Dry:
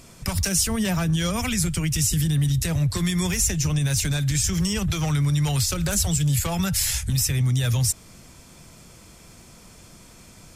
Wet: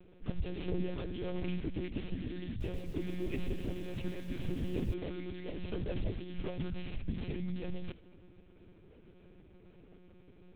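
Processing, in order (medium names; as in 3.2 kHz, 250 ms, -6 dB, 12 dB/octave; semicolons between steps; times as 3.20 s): median filter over 25 samples; dynamic bell 1.2 kHz, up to -5 dB, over -46 dBFS, Q 0.99; static phaser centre 360 Hz, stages 4; thinning echo 80 ms, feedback 40%, high-pass 260 Hz, level -15 dB; monotone LPC vocoder at 8 kHz 180 Hz; 2.48–4.94 s: bit-crushed delay 124 ms, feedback 55%, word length 8-bit, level -10 dB; trim -4 dB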